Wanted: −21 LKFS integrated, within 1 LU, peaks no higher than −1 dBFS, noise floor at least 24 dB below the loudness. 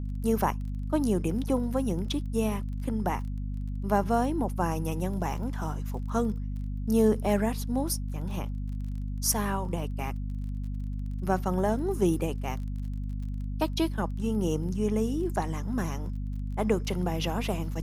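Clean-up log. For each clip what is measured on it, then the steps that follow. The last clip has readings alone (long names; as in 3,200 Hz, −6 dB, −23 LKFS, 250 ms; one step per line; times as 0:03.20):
crackle rate 24 per second; mains hum 50 Hz; hum harmonics up to 250 Hz; level of the hum −30 dBFS; integrated loudness −30.0 LKFS; sample peak −10.5 dBFS; target loudness −21.0 LKFS
→ click removal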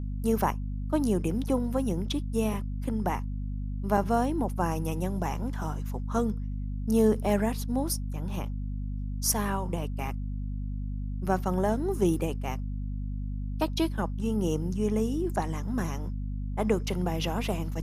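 crackle rate 0.056 per second; mains hum 50 Hz; hum harmonics up to 250 Hz; level of the hum −30 dBFS
→ mains-hum notches 50/100/150/200/250 Hz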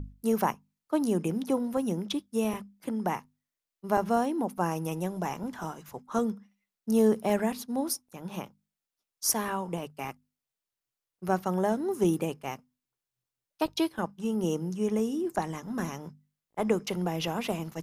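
mains hum none found; integrated loudness −30.5 LKFS; sample peak −11.0 dBFS; target loudness −21.0 LKFS
→ level +9.5 dB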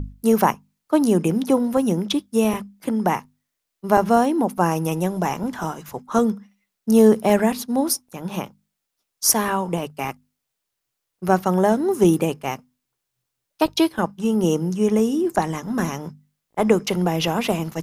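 integrated loudness −21.0 LKFS; sample peak −1.5 dBFS; background noise floor −80 dBFS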